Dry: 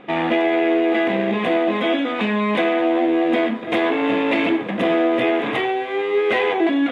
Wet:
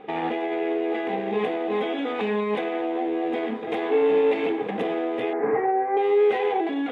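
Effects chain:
0:05.33–0:05.97: Butterworth low-pass 2,000 Hz 48 dB per octave
brickwall limiter −15 dBFS, peak gain reduction 7 dB
hollow resonant body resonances 440/790 Hz, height 16 dB, ringing for 80 ms
level −6.5 dB

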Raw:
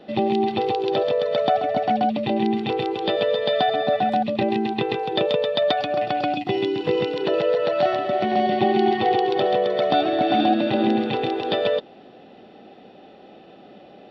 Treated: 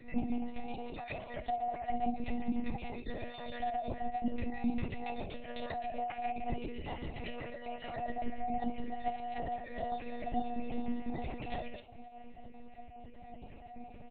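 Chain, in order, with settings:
time-frequency cells dropped at random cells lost 29%
low-shelf EQ 140 Hz +2.5 dB
mains-hum notches 50/100/150/200/250/300/350/400/450/500 Hz
downward compressor 16 to 1, threshold −30 dBFS, peak gain reduction 16 dB
auto-filter notch saw up 2.3 Hz 750–1,800 Hz
phaser with its sweep stopped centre 2,300 Hz, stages 8
single-tap delay 531 ms −23 dB
convolution reverb, pre-delay 3 ms, DRR 0 dB
one-pitch LPC vocoder at 8 kHz 240 Hz
level −6.5 dB

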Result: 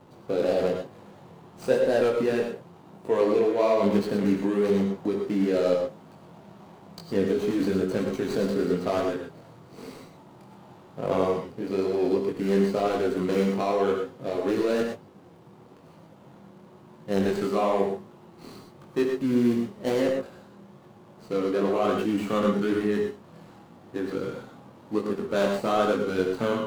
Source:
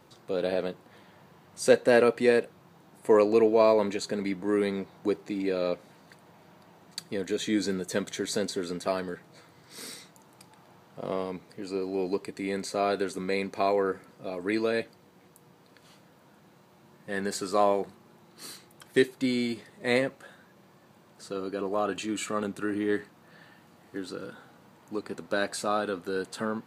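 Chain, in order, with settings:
running median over 25 samples
in parallel at +3 dB: compressor whose output falls as the input rises −30 dBFS, ratio −0.5
on the sum: chorus effect 1 Hz, delay 18.5 ms, depth 7.1 ms
reverb whose tail is shaped and stops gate 140 ms rising, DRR 3 dB

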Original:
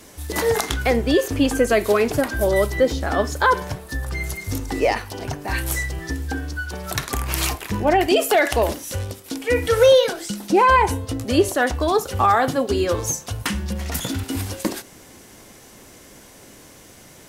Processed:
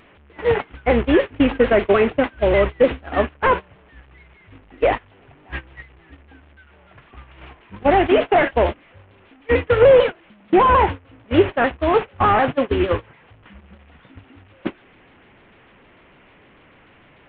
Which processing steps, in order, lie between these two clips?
linear delta modulator 16 kbit/s, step −23 dBFS
noise gate −20 dBFS, range −24 dB
pitch modulation by a square or saw wave saw down 6.7 Hz, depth 100 cents
level +2.5 dB

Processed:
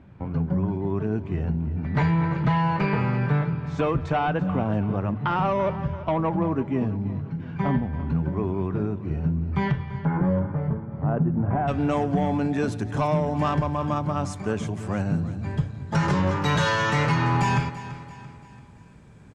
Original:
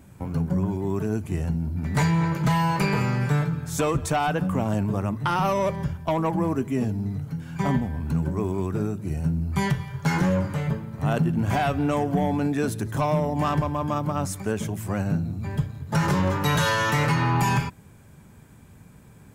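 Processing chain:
Bessel low-pass filter 2,600 Hz, order 4, from 0:09.98 990 Hz, from 0:11.67 5,600 Hz
repeating echo 338 ms, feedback 46%, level −15 dB

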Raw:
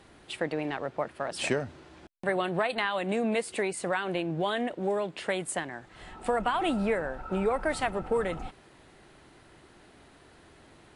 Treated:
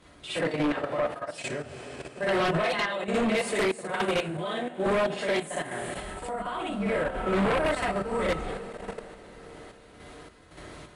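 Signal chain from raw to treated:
coupled-rooms reverb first 0.24 s, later 5 s, from −22 dB, DRR −4.5 dB
output level in coarse steps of 13 dB
sample-and-hold tremolo, depth 80%
on a send: backwards echo 61 ms −6.5 dB
on the sum: sine wavefolder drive 9 dB, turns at −15.5 dBFS
level −5.5 dB

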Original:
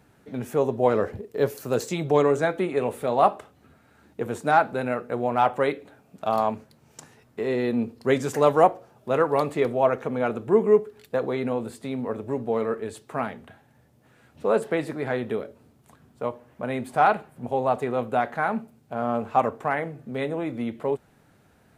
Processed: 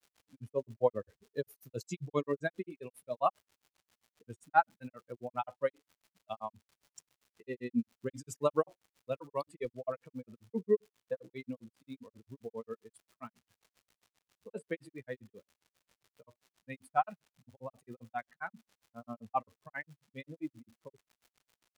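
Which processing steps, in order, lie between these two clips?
spectral dynamics exaggerated over time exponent 2
surface crackle 320 per second −49 dBFS
granular cloud 102 ms, grains 7.5 per second, spray 34 ms, pitch spread up and down by 0 semitones
level −2 dB

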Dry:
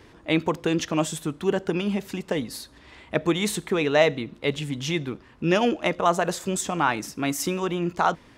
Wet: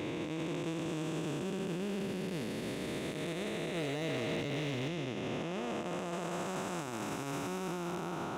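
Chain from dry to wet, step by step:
spectrum smeared in time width 1,160 ms
0:03.77–0:04.88: leveller curve on the samples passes 2
high-pass filter 59 Hz
brickwall limiter −29 dBFS, peak gain reduction 11.5 dB

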